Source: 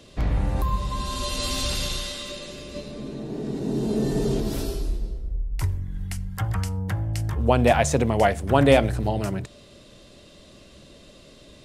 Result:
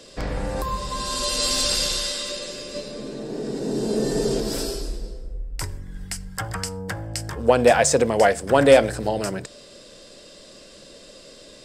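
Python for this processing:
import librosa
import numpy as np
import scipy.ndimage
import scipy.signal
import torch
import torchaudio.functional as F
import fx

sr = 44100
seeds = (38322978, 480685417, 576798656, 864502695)

p1 = fx.graphic_eq_31(x, sr, hz=(500, 1600, 5000, 8000), db=(8, 5, 10, 10))
p2 = 10.0 ** (-13.5 / 20.0) * np.tanh(p1 / 10.0 ** (-13.5 / 20.0))
p3 = p1 + (p2 * librosa.db_to_amplitude(-8.0))
p4 = fx.peak_eq(p3, sr, hz=78.0, db=-12.0, octaves=1.8)
y = p4 * librosa.db_to_amplitude(-1.0)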